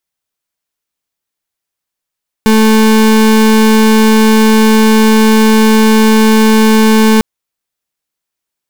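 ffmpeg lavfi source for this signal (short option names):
-f lavfi -i "aevalsrc='0.473*(2*lt(mod(219*t,1),0.34)-1)':d=4.75:s=44100"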